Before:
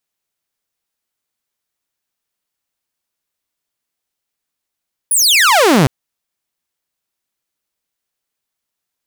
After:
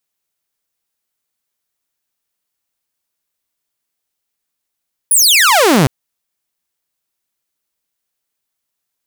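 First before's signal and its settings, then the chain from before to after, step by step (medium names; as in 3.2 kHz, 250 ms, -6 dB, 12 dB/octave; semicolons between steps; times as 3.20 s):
laser zap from 11 kHz, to 120 Hz, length 0.76 s saw, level -5 dB
treble shelf 7.5 kHz +4.5 dB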